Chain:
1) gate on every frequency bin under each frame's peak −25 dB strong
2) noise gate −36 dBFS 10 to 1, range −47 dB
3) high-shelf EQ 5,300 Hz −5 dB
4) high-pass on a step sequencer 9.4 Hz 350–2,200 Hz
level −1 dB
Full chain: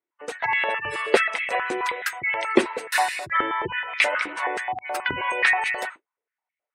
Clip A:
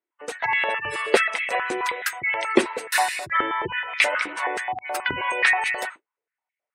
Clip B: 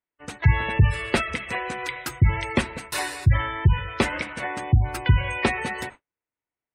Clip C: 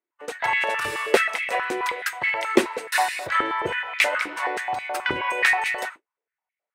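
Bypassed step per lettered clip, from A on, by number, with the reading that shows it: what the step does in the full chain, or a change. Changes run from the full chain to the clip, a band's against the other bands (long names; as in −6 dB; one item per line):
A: 3, 8 kHz band +3.5 dB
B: 4, 125 Hz band +30.0 dB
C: 1, 8 kHz band +2.0 dB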